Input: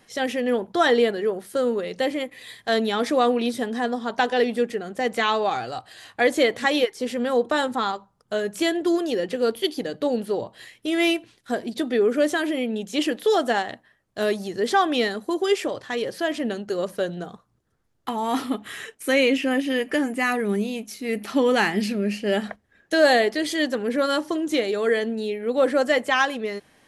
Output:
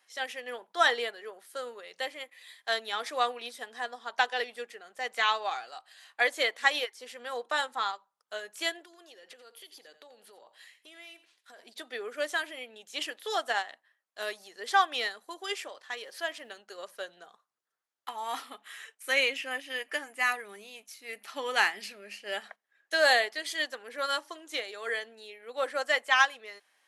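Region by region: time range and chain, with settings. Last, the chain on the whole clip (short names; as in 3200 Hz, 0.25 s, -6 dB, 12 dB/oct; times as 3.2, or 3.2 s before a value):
8.82–11.59 compressor 12:1, threshold -31 dBFS + echo 87 ms -14.5 dB
15.92–16.56 upward compressor, threshold -27 dBFS + added noise pink -65 dBFS
whole clip: HPF 900 Hz 12 dB/oct; upward expander 1.5:1, over -37 dBFS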